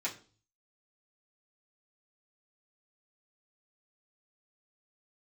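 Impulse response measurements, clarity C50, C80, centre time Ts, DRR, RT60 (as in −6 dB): 13.0 dB, 17.5 dB, 15 ms, −7.5 dB, 0.40 s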